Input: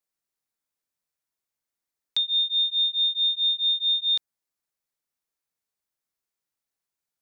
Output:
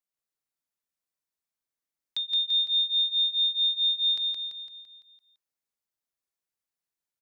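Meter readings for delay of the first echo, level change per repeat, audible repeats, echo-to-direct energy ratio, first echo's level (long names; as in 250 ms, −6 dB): 169 ms, −5.5 dB, 6, −1.5 dB, −3.0 dB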